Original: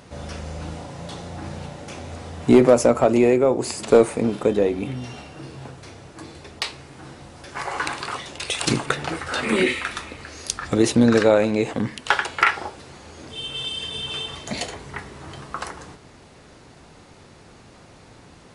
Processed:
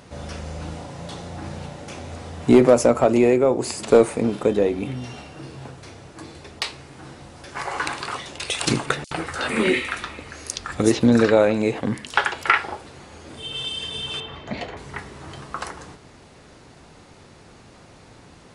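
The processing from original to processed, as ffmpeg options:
-filter_complex "[0:a]asettb=1/sr,asplit=3[a][b][c];[a]atrim=end=9.044[d];[b]atrim=start=9.04:end=13.52,asetpts=PTS-STARTPTS,afade=t=in:d=0.004:c=qsin,afade=t=out:st=4.476:d=0.004:c=qsin,acrossover=split=5500[e][f];[e]adelay=70[g];[g][f]amix=inputs=2:normalize=0,atrim=end_sample=197568[h];[c]atrim=start=13.516[i];[d][h]acrossfade=d=0.004:c1=hsin:c2=qsin[j];[j][i]acrossfade=d=0.004:c1=qsin:c2=hsin,asettb=1/sr,asplit=3[k][l][m];[k]atrim=end=14.204[n];[l]atrim=start=14.2:end=14.77,asetpts=PTS-STARTPTS,afade=t=in:d=0.004:c=qsin,afade=t=out:st=0.566:d=0.004:c=qsin,lowpass=2.5k[o];[m]atrim=start=14.766[p];[n][o]acrossfade=d=0.004:c1=hsin:c2=qsin[q];[q][p]acrossfade=d=0.004:c1=qsin:c2=hsin"

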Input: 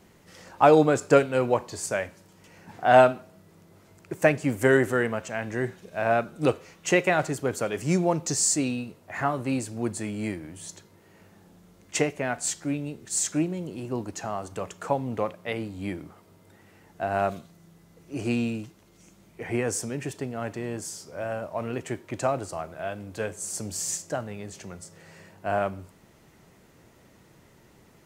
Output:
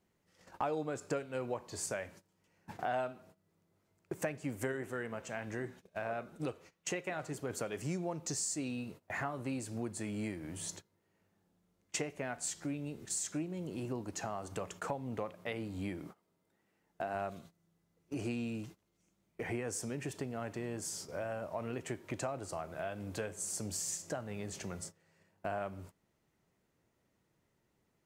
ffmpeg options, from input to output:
-filter_complex "[0:a]asplit=3[a][b][c];[a]afade=t=out:st=4.71:d=0.02[d];[b]flanger=delay=0.6:depth=7.6:regen=84:speed=2:shape=sinusoidal,afade=t=in:st=4.71:d=0.02,afade=t=out:st=7.49:d=0.02[e];[c]afade=t=in:st=7.49:d=0.02[f];[d][e][f]amix=inputs=3:normalize=0,asettb=1/sr,asplit=3[g][h][i];[g]atrim=end=16.014[j];[h]atrim=start=16.01:end=17.15,asetpts=PTS-STARTPTS,afade=t=in:d=0.004:c=qsin,afade=t=out:st=1.136:d=0.004:c=qsin,equalizer=f=88:t=o:w=0.51:g=-14.5[k];[i]atrim=start=17.146[l];[j][k]acrossfade=d=0.004:c1=hsin:c2=qsin[m];[m][l]acrossfade=d=0.004:c1=qsin:c2=hsin,agate=range=-21dB:threshold=-45dB:ratio=16:detection=peak,acompressor=threshold=-37dB:ratio=4"

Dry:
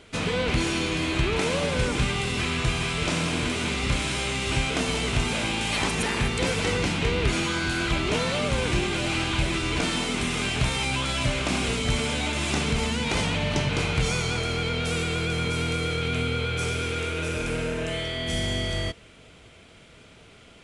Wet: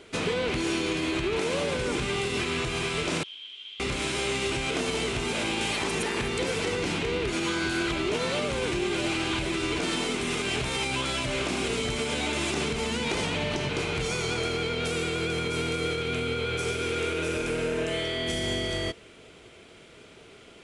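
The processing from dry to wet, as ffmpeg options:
-filter_complex "[0:a]asettb=1/sr,asplit=3[a][b][c];[a]atrim=end=3.234[d];[b]atrim=start=3.23:end=3.8,asetpts=PTS-STARTPTS,afade=t=in:d=0.004:c=qsin,afade=t=out:st=0.566:d=0.004:c=qsin,bandpass=f=3.2k:t=q:w=19[e];[c]atrim=start=3.796[f];[d][e]acrossfade=d=0.004:c1=hsin:c2=qsin[g];[g][f]acrossfade=d=0.004:c1=qsin:c2=hsin,equalizer=f=380:t=o:w=0.57:g=7.5,alimiter=limit=-17.5dB:level=0:latency=1:release=113,lowshelf=f=150:g=-7.5"

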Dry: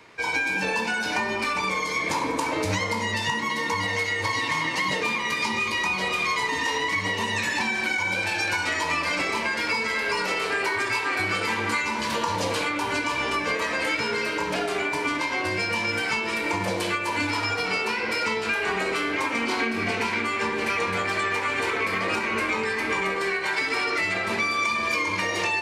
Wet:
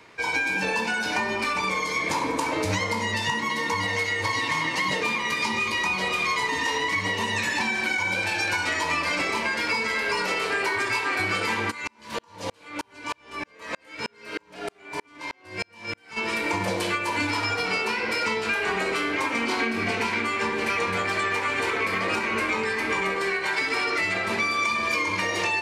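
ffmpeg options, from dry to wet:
-filter_complex "[0:a]asplit=3[a][b][c];[a]afade=t=out:st=11.7:d=0.02[d];[b]aeval=exprs='val(0)*pow(10,-40*if(lt(mod(-3.2*n/s,1),2*abs(-3.2)/1000),1-mod(-3.2*n/s,1)/(2*abs(-3.2)/1000),(mod(-3.2*n/s,1)-2*abs(-3.2)/1000)/(1-2*abs(-3.2)/1000))/20)':c=same,afade=t=in:st=11.7:d=0.02,afade=t=out:st=16.16:d=0.02[e];[c]afade=t=in:st=16.16:d=0.02[f];[d][e][f]amix=inputs=3:normalize=0"

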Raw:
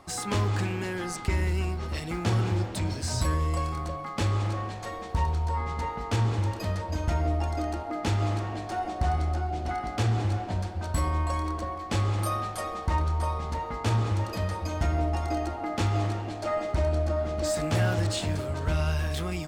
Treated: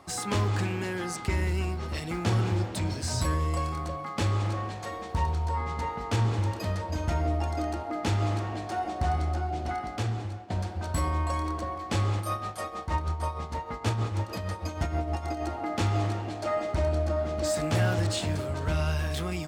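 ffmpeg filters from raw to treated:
-filter_complex "[0:a]asettb=1/sr,asplit=3[a][b][c];[a]atrim=end=12.164[d];[b]atrim=start=12.16:end=15.45,asetpts=PTS-STARTPTS,afade=t=in:d=0.004:c=qsin,afade=t=out:st=3.286:d=0.004:c=qsin,tremolo=f=6.4:d=0.59[e];[c]atrim=start=15.446[f];[d][e]acrossfade=d=0.004:c1=hsin:c2=qsin[g];[g][f]acrossfade=d=0.004:c1=qsin:c2=hsin,asplit=2[h][i];[h]atrim=end=10.5,asetpts=PTS-STARTPTS,afade=t=out:st=9.65:d=0.85:silence=0.199526[j];[i]atrim=start=10.5,asetpts=PTS-STARTPTS,afade=t=in:d=0.004:c=hsin:silence=0.199526[k];[j][k]concat=n=2:v=0:a=1,highpass=59"

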